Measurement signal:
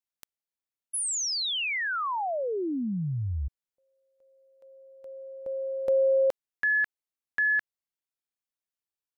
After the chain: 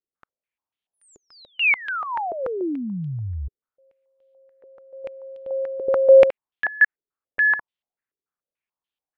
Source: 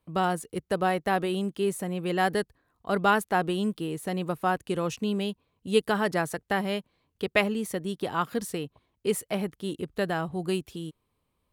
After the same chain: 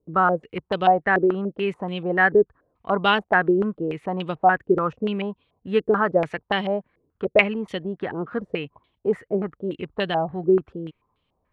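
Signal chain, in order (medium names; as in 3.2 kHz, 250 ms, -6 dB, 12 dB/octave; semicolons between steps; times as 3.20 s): step-sequenced low-pass 6.9 Hz 410–3200 Hz; trim +1.5 dB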